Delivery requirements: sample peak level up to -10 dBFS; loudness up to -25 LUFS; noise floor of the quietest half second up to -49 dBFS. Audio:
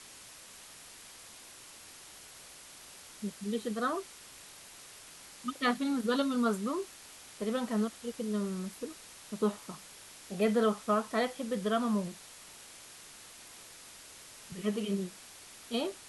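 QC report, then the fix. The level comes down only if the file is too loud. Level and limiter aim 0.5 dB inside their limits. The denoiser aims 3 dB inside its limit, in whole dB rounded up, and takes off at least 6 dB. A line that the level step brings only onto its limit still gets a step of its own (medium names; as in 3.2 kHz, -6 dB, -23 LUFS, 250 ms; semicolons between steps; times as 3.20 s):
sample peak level -17.5 dBFS: pass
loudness -33.5 LUFS: pass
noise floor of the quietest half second -52 dBFS: pass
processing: none needed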